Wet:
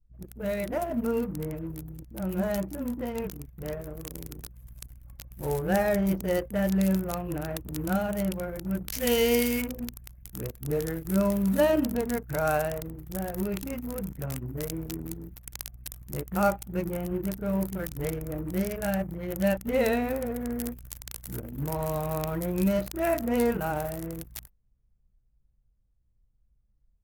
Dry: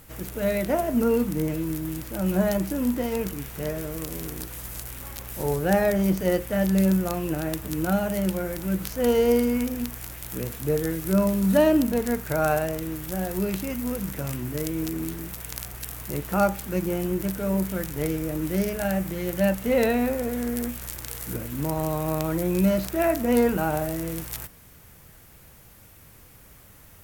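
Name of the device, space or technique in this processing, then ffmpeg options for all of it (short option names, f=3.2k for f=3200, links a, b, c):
voice memo with heavy noise removal: -filter_complex "[0:a]asettb=1/sr,asplit=3[a][b][c];[a]atrim=end=8.894[d];[b]atrim=start=8.89:end=9.59,asetpts=PTS-STARTPTS,afade=t=in:d=0.004:c=qsin,afade=t=out:st=0.696:d=0.004:c=qsin,highshelf=f=1.7k:t=q:w=1.5:g=7.5[e];[c]atrim=start=9.586[f];[d][e]acrossfade=d=0.004:c1=hsin:c2=qsin[g];[g][f]acrossfade=d=0.004:c1=qsin:c2=hsin,asettb=1/sr,asplit=3[h][i][j];[h]atrim=end=21.394[k];[i]atrim=start=21.39:end=22.03,asetpts=PTS-STARTPTS,afade=t=in:d=0.004:c=qsin,afade=t=out:st=0.636:d=0.004:c=qsin,asplit=2[l][m];[m]adelay=21,volume=-9.5dB[n];[l][n]amix=inputs=2:normalize=0,atrim=end_sample=28224[o];[j]atrim=start=22.026[p];[k][o]acrossfade=d=0.004:c1=hsin:c2=qsin[q];[q][p]acrossfade=d=0.004:c1=qsin:c2=hsin,acrossover=split=300[r][s];[s]adelay=30[t];[r][t]amix=inputs=2:normalize=0,anlmdn=15.8,dynaudnorm=f=440:g=17:m=3dB,volume=-5dB"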